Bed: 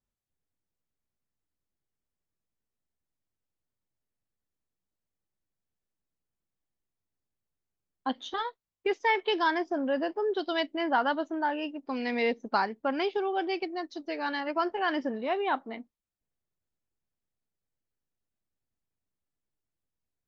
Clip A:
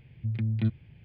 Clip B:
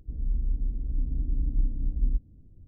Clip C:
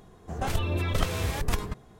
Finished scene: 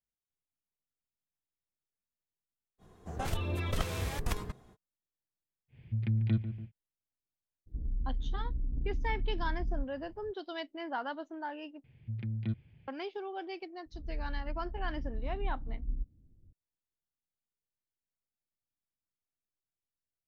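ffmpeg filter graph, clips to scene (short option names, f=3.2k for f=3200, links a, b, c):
-filter_complex "[1:a]asplit=2[a][b];[2:a]asplit=2[c][d];[0:a]volume=-10.5dB[e];[a]asplit=2[f][g];[g]adelay=144,lowpass=f=1k:p=1,volume=-10dB,asplit=2[h][i];[i]adelay=144,lowpass=f=1k:p=1,volume=0.54,asplit=2[j][k];[k]adelay=144,lowpass=f=1k:p=1,volume=0.54,asplit=2[l][m];[m]adelay=144,lowpass=f=1k:p=1,volume=0.54,asplit=2[n][o];[o]adelay=144,lowpass=f=1k:p=1,volume=0.54,asplit=2[p][q];[q]adelay=144,lowpass=f=1k:p=1,volume=0.54[r];[f][h][j][l][n][p][r]amix=inputs=7:normalize=0[s];[c]acompressor=threshold=-27dB:ratio=6:attack=3.2:release=140:knee=1:detection=peak[t];[e]asplit=2[u][v];[u]atrim=end=11.844[w];[b]atrim=end=1.04,asetpts=PTS-STARTPTS,volume=-7.5dB[x];[v]atrim=start=12.876[y];[3:a]atrim=end=1.99,asetpts=PTS-STARTPTS,volume=-6dB,afade=t=in:d=0.05,afade=t=out:st=1.94:d=0.05,adelay=2780[z];[s]atrim=end=1.04,asetpts=PTS-STARTPTS,volume=-2.5dB,afade=t=in:d=0.1,afade=t=out:st=0.94:d=0.1,adelay=5680[aa];[t]atrim=end=2.67,asetpts=PTS-STARTPTS,volume=-2dB,afade=t=in:d=0.02,afade=t=out:st=2.65:d=0.02,adelay=7660[ab];[d]atrim=end=2.67,asetpts=PTS-STARTPTS,volume=-10dB,afade=t=in:d=0.004:c=hsin,afade=t=out:st=2.666:d=0.004:c=hsin,adelay=13860[ac];[w][x]acrossfade=d=0.004:c1=hsin:c2=hsin[ad];[ad][y]acrossfade=d=0.004:c1=hsin:c2=hsin[ae];[ae][z][aa][ab][ac]amix=inputs=5:normalize=0"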